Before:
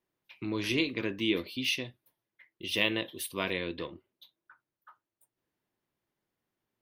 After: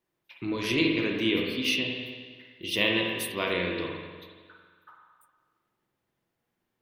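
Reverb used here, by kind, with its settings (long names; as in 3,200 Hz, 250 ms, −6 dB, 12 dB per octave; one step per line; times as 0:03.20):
spring reverb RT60 1.6 s, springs 44/50 ms, chirp 40 ms, DRR 0 dB
level +2 dB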